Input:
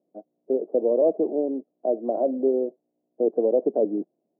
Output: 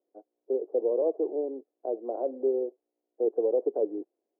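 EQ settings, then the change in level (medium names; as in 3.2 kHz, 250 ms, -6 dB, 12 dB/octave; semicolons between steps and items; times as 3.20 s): high-pass 380 Hz 24 dB/octave; distance through air 340 m; peaking EQ 630 Hz -10 dB 0.39 oct; 0.0 dB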